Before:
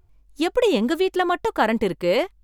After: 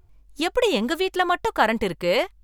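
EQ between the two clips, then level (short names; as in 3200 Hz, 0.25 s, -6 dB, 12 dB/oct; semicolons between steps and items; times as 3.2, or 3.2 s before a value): dynamic EQ 300 Hz, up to -7 dB, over -34 dBFS, Q 0.77; +2.5 dB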